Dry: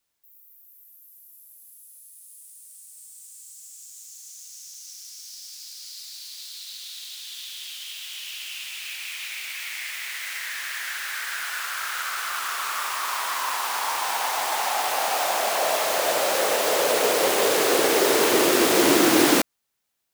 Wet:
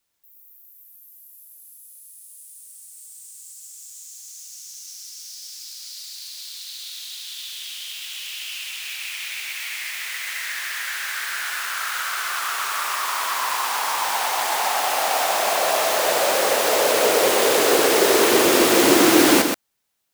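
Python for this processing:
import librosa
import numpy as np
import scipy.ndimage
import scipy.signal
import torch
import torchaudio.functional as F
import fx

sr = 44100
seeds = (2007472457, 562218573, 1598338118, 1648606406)

y = x + 10.0 ** (-5.5 / 20.0) * np.pad(x, (int(126 * sr / 1000.0), 0))[:len(x)]
y = y * librosa.db_to_amplitude(2.0)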